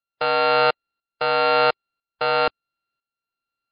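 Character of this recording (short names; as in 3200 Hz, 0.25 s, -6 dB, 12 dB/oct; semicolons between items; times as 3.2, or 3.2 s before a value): a buzz of ramps at a fixed pitch in blocks of 32 samples; tremolo saw up 1 Hz, depth 70%; MP3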